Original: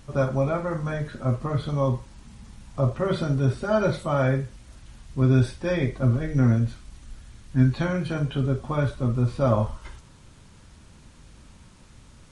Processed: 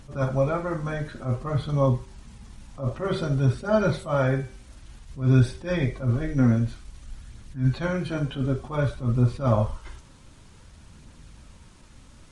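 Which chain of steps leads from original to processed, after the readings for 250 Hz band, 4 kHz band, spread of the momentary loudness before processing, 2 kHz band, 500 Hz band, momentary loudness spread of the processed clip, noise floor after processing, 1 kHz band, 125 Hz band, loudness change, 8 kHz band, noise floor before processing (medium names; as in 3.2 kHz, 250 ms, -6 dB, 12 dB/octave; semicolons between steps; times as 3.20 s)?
-0.5 dB, -0.5 dB, 8 LU, -0.5 dB, -1.0 dB, 9 LU, -51 dBFS, -1.0 dB, -0.5 dB, -0.5 dB, no reading, -51 dBFS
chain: phaser 0.54 Hz, delay 4 ms, feedback 25%; de-hum 386.4 Hz, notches 31; attacks held to a fixed rise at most 180 dB/s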